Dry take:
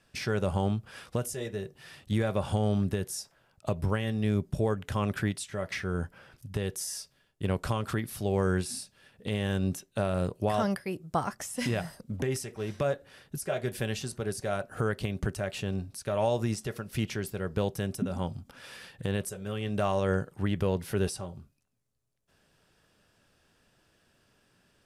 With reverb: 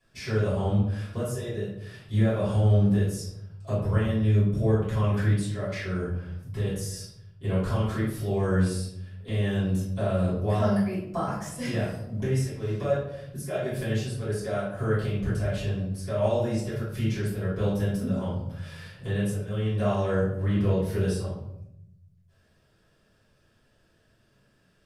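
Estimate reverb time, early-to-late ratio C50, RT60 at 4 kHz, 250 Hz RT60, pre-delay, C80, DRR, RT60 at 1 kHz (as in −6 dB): 0.75 s, 1.5 dB, 0.50 s, 1.1 s, 3 ms, 6.0 dB, −13.5 dB, 0.70 s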